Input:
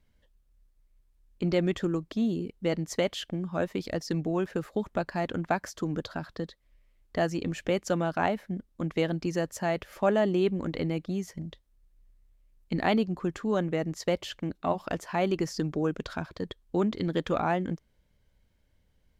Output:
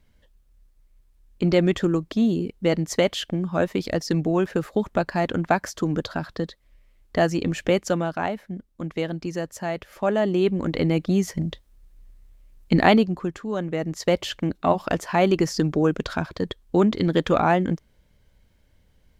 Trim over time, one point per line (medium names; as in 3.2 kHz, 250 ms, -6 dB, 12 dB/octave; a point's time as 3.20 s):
7.74 s +7 dB
8.23 s +0.5 dB
9.91 s +0.5 dB
11.24 s +11.5 dB
12.78 s +11.5 dB
13.47 s -1 dB
14.21 s +8 dB